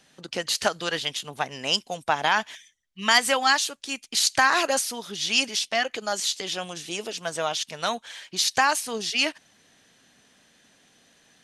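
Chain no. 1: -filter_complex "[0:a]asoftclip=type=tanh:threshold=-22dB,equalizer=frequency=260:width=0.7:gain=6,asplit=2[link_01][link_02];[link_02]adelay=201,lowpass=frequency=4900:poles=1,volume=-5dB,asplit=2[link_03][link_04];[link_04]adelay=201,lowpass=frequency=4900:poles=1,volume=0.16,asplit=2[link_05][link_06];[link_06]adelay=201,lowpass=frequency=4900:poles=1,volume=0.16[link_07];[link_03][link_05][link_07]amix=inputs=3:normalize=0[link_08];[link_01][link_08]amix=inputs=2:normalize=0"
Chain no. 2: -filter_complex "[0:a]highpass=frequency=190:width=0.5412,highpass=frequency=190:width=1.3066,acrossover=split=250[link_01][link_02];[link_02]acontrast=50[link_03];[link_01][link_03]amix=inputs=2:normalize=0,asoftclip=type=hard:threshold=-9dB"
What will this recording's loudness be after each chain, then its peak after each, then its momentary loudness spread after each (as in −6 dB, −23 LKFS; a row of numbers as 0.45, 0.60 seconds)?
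−27.5, −19.5 LKFS; −15.0, −9.0 dBFS; 8, 11 LU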